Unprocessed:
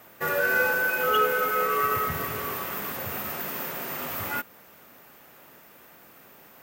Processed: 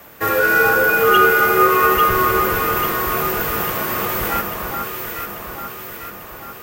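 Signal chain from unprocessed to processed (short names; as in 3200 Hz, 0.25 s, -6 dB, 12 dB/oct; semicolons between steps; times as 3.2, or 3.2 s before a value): echo with dull and thin repeats by turns 0.422 s, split 1500 Hz, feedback 74%, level -2.5 dB; frequency shift -51 Hz; gain +8.5 dB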